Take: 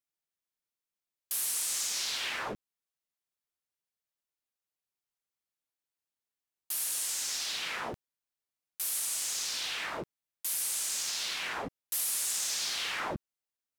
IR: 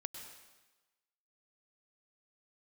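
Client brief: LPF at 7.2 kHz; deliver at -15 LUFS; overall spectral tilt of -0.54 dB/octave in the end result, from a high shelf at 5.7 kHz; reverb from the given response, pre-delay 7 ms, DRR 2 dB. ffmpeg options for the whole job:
-filter_complex "[0:a]lowpass=7200,highshelf=f=5700:g=8.5,asplit=2[s0][s1];[1:a]atrim=start_sample=2205,adelay=7[s2];[s1][s2]afir=irnorm=-1:irlink=0,volume=1[s3];[s0][s3]amix=inputs=2:normalize=0,volume=5.01"

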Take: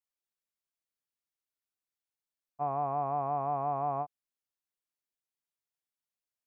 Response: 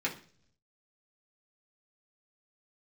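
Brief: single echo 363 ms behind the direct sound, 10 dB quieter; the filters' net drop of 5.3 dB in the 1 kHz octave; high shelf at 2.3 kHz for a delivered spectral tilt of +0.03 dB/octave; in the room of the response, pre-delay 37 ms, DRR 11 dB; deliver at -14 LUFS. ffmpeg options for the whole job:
-filter_complex "[0:a]equalizer=f=1000:t=o:g=-7.5,highshelf=f=2300:g=-7,aecho=1:1:363:0.316,asplit=2[s0][s1];[1:a]atrim=start_sample=2205,adelay=37[s2];[s1][s2]afir=irnorm=-1:irlink=0,volume=0.133[s3];[s0][s3]amix=inputs=2:normalize=0,volume=14.1"

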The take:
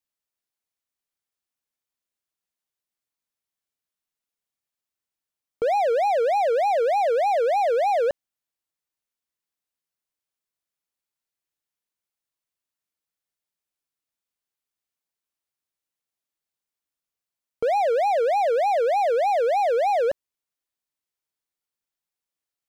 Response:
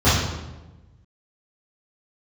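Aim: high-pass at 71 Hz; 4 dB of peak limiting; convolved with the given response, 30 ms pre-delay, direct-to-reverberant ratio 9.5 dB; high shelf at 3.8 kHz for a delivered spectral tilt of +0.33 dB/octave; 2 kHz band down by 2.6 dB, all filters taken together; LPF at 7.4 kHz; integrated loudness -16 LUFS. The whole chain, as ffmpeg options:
-filter_complex "[0:a]highpass=71,lowpass=7400,equalizer=f=2000:t=o:g=-5,highshelf=f=3800:g=6.5,alimiter=limit=0.106:level=0:latency=1,asplit=2[s0][s1];[1:a]atrim=start_sample=2205,adelay=30[s2];[s1][s2]afir=irnorm=-1:irlink=0,volume=0.0266[s3];[s0][s3]amix=inputs=2:normalize=0,volume=2.51"

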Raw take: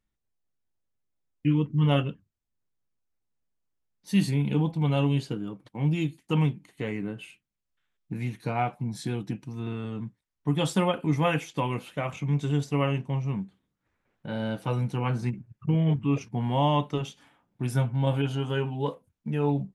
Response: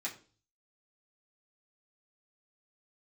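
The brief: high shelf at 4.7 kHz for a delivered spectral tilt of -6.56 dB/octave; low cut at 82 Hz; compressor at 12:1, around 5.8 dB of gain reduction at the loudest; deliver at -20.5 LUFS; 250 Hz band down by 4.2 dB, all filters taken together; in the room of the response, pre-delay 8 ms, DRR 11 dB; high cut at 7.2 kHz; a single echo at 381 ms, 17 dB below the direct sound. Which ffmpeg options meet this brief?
-filter_complex "[0:a]highpass=82,lowpass=7200,equalizer=f=250:t=o:g=-6.5,highshelf=f=4700:g=-7.5,acompressor=threshold=0.0447:ratio=12,aecho=1:1:381:0.141,asplit=2[s0][s1];[1:a]atrim=start_sample=2205,adelay=8[s2];[s1][s2]afir=irnorm=-1:irlink=0,volume=0.237[s3];[s0][s3]amix=inputs=2:normalize=0,volume=4.73"

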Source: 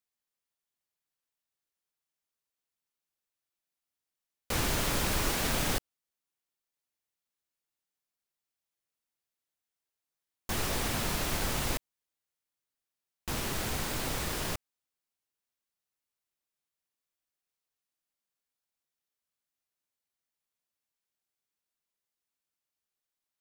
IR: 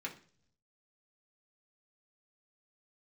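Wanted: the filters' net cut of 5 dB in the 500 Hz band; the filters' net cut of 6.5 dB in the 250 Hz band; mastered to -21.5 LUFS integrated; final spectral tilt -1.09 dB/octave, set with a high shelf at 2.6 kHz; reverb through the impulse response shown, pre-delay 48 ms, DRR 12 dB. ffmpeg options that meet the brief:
-filter_complex "[0:a]equalizer=f=250:t=o:g=-8,equalizer=f=500:t=o:g=-4.5,highshelf=f=2600:g=7.5,asplit=2[s0][s1];[1:a]atrim=start_sample=2205,adelay=48[s2];[s1][s2]afir=irnorm=-1:irlink=0,volume=0.237[s3];[s0][s3]amix=inputs=2:normalize=0,volume=1.88"

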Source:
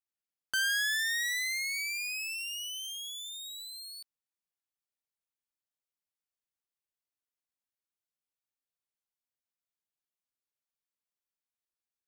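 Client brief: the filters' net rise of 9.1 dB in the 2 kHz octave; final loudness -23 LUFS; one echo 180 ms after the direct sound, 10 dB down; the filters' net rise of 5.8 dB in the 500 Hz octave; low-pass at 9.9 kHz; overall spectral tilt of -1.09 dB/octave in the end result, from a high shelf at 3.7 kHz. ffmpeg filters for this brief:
-af "lowpass=9900,equalizer=f=500:t=o:g=6.5,equalizer=f=2000:t=o:g=8.5,highshelf=f=3700:g=8.5,aecho=1:1:180:0.316"

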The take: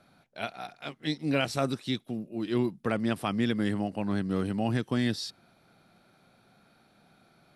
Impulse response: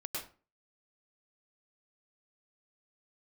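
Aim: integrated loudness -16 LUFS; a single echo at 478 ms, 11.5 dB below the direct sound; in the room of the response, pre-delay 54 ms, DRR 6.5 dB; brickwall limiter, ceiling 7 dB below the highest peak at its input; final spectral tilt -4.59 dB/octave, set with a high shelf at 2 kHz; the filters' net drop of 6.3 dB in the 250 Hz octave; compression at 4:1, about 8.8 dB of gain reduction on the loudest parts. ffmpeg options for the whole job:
-filter_complex "[0:a]equalizer=f=250:t=o:g=-8,highshelf=f=2000:g=5.5,acompressor=threshold=0.02:ratio=4,alimiter=level_in=1.33:limit=0.0631:level=0:latency=1,volume=0.75,aecho=1:1:478:0.266,asplit=2[s0][s1];[1:a]atrim=start_sample=2205,adelay=54[s2];[s1][s2]afir=irnorm=-1:irlink=0,volume=0.422[s3];[s0][s3]amix=inputs=2:normalize=0,volume=14.1"

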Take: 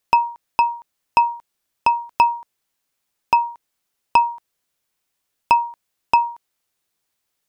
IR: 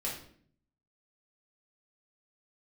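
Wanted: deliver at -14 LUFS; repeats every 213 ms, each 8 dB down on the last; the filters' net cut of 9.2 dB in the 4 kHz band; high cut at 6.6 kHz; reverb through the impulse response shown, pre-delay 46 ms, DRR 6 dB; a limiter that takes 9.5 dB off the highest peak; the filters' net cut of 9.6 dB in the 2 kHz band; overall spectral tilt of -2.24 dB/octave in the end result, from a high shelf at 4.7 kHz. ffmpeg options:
-filter_complex "[0:a]lowpass=6600,equalizer=f=2000:t=o:g=-9,equalizer=f=4000:t=o:g=-8,highshelf=f=4700:g=-3,alimiter=limit=0.158:level=0:latency=1,aecho=1:1:213|426|639|852|1065:0.398|0.159|0.0637|0.0255|0.0102,asplit=2[s0][s1];[1:a]atrim=start_sample=2205,adelay=46[s2];[s1][s2]afir=irnorm=-1:irlink=0,volume=0.355[s3];[s0][s3]amix=inputs=2:normalize=0,volume=3.98"

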